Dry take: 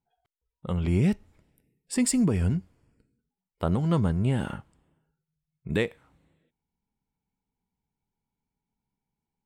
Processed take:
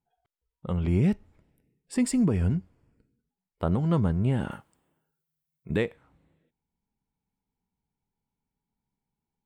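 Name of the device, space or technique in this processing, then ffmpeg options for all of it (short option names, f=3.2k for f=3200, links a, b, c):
behind a face mask: -filter_complex "[0:a]highshelf=f=3k:g=-8,asettb=1/sr,asplit=3[a][b][c];[a]atrim=end=4.514[d];[b]atrim=start=4.51:end=5.7,asetpts=PTS-STARTPTS,afade=t=in:d=0.004:c=qsin,afade=t=out:st=1.186:d=0.004:c=qsin,aemphasis=mode=production:type=bsi[e];[c]atrim=start=5.696[f];[d][e]acrossfade=d=0.004:c1=hsin:c2=qsin[g];[g][f]acrossfade=d=0.004:c1=qsin:c2=hsin"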